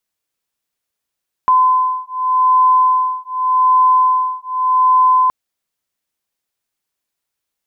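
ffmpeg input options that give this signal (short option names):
-f lavfi -i "aevalsrc='0.211*(sin(2*PI*1020*t)+sin(2*PI*1020.85*t))':d=3.82:s=44100"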